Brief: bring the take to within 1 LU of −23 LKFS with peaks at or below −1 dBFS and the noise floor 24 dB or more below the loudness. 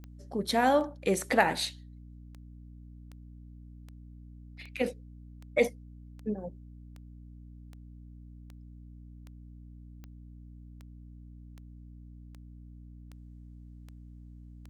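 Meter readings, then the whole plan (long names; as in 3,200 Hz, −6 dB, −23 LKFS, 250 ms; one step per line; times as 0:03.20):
number of clicks 20; mains hum 60 Hz; hum harmonics up to 300 Hz; level of the hum −46 dBFS; integrated loudness −30.0 LKFS; sample peak −9.5 dBFS; target loudness −23.0 LKFS
→ click removal
mains-hum notches 60/120/180/240/300 Hz
level +7 dB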